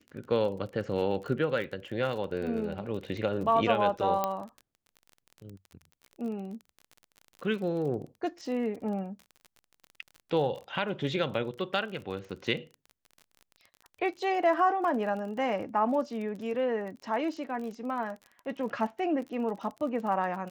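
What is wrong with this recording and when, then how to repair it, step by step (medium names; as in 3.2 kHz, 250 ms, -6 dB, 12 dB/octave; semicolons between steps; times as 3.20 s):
crackle 33 per s -38 dBFS
4.24 s: pop -14 dBFS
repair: de-click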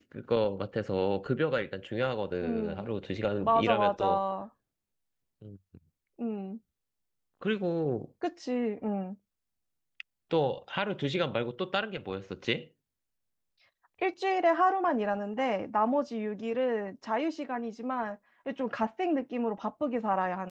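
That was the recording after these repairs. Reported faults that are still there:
nothing left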